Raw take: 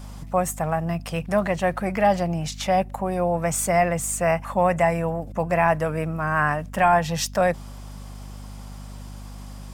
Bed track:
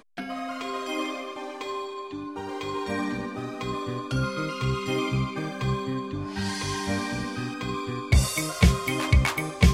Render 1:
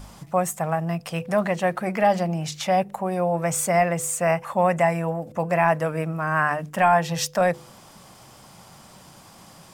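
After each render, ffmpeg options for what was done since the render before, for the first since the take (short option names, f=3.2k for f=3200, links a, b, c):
-af "bandreject=f=50:t=h:w=4,bandreject=f=100:t=h:w=4,bandreject=f=150:t=h:w=4,bandreject=f=200:t=h:w=4,bandreject=f=250:t=h:w=4,bandreject=f=300:t=h:w=4,bandreject=f=350:t=h:w=4,bandreject=f=400:t=h:w=4,bandreject=f=450:t=h:w=4,bandreject=f=500:t=h:w=4"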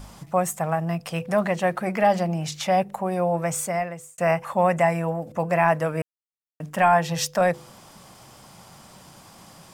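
-filter_complex "[0:a]asplit=4[a][b][c][d];[a]atrim=end=4.18,asetpts=PTS-STARTPTS,afade=t=out:st=3.34:d=0.84[e];[b]atrim=start=4.18:end=6.02,asetpts=PTS-STARTPTS,afade=t=in:d=0.004:c=hsin,afade=t=out:st=1.836:d=0.004:c=hsin[f];[c]atrim=start=6.02:end=6.6,asetpts=PTS-STARTPTS,volume=0[g];[d]atrim=start=6.6,asetpts=PTS-STARTPTS,afade=t=in:d=0.004:c=hsin[h];[e][f][g][h]concat=n=4:v=0:a=1"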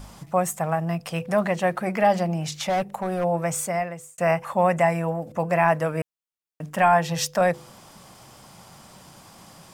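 -filter_complex "[0:a]asplit=3[a][b][c];[a]afade=t=out:st=2.68:d=0.02[d];[b]volume=19.5dB,asoftclip=hard,volume=-19.5dB,afade=t=in:st=2.68:d=0.02,afade=t=out:st=3.23:d=0.02[e];[c]afade=t=in:st=3.23:d=0.02[f];[d][e][f]amix=inputs=3:normalize=0"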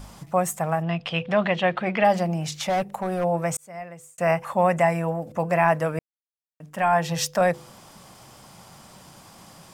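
-filter_complex "[0:a]asplit=3[a][b][c];[a]afade=t=out:st=0.82:d=0.02[d];[b]lowpass=f=3.3k:t=q:w=3.4,afade=t=in:st=0.82:d=0.02,afade=t=out:st=2.03:d=0.02[e];[c]afade=t=in:st=2.03:d=0.02[f];[d][e][f]amix=inputs=3:normalize=0,asplit=3[g][h][i];[g]atrim=end=3.57,asetpts=PTS-STARTPTS,afade=t=out:st=3.566:d=0.004:c=hsin[j];[h]atrim=start=3.57:end=5.99,asetpts=PTS-STARTPTS,afade=t=in:d=0.73,afade=t=out:st=2.416:d=0.004:c=hsin[k];[i]atrim=start=5.99,asetpts=PTS-STARTPTS,afade=t=in:d=1.07:c=qua[l];[j][k][l]concat=n=3:v=0:a=1"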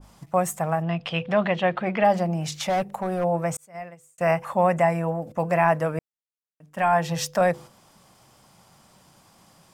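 -af "agate=range=-8dB:threshold=-38dB:ratio=16:detection=peak,adynamicequalizer=threshold=0.0158:dfrequency=1700:dqfactor=0.7:tfrequency=1700:tqfactor=0.7:attack=5:release=100:ratio=0.375:range=2.5:mode=cutabove:tftype=highshelf"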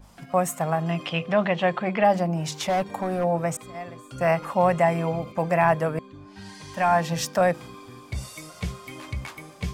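-filter_complex "[1:a]volume=-12.5dB[a];[0:a][a]amix=inputs=2:normalize=0"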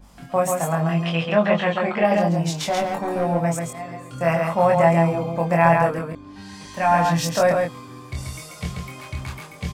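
-filter_complex "[0:a]asplit=2[a][b];[b]adelay=24,volume=-2.5dB[c];[a][c]amix=inputs=2:normalize=0,aecho=1:1:137:0.631"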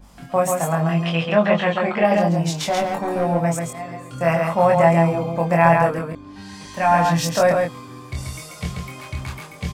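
-af "volume=1.5dB"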